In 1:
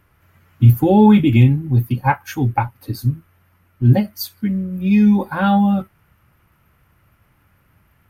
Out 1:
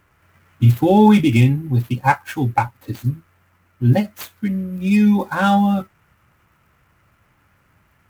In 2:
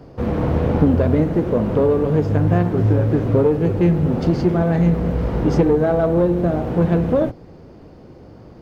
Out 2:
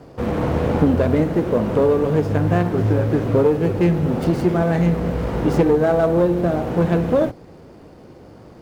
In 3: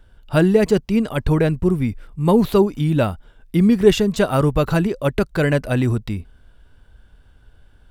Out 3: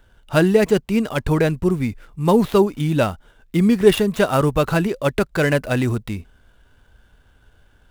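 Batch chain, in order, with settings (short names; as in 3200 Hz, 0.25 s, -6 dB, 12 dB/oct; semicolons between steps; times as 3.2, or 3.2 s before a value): median filter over 9 samples; tilt +1.5 dB/oct; gain +2 dB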